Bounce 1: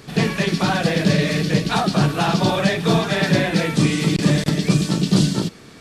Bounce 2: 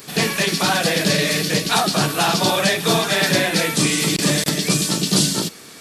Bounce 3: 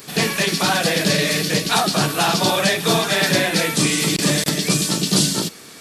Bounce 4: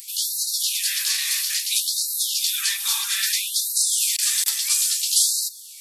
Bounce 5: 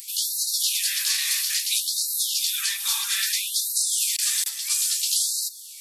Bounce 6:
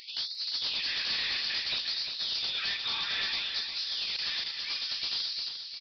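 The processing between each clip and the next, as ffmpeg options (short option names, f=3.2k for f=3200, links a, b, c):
-af "aemphasis=mode=production:type=bsi,volume=2dB"
-af anull
-af "aderivative,afftfilt=real='re*gte(b*sr/1024,740*pow(3800/740,0.5+0.5*sin(2*PI*0.6*pts/sr)))':imag='im*gte(b*sr/1024,740*pow(3800/740,0.5+0.5*sin(2*PI*0.6*pts/sr)))':win_size=1024:overlap=0.75,volume=2.5dB"
-af "alimiter=limit=-11.5dB:level=0:latency=1:release=455"
-af "aresample=11025,asoftclip=type=tanh:threshold=-28dB,aresample=44100,aecho=1:1:351|702|1053|1404|1755:0.422|0.169|0.0675|0.027|0.0108"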